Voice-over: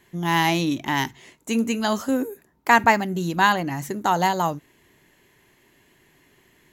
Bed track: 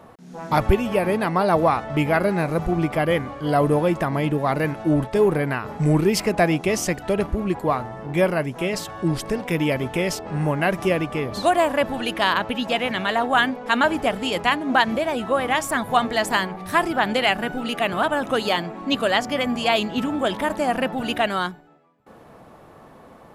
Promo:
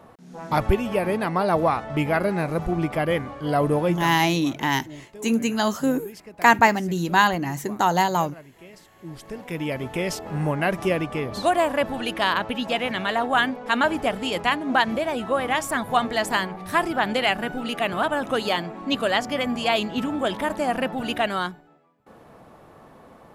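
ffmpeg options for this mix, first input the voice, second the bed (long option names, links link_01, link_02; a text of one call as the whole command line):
ffmpeg -i stem1.wav -i stem2.wav -filter_complex "[0:a]adelay=3750,volume=0.5dB[link_01];[1:a]volume=17dB,afade=type=out:start_time=3.89:duration=0.28:silence=0.112202,afade=type=in:start_time=8.96:duration=1.25:silence=0.105925[link_02];[link_01][link_02]amix=inputs=2:normalize=0" out.wav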